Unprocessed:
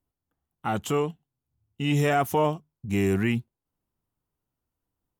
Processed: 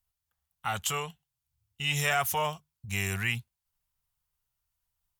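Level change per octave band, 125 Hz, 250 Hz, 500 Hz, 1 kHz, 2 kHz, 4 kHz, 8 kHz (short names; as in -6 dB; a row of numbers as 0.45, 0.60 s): -7.0, -15.5, -11.0, -4.0, +2.5, +4.5, +6.5 dB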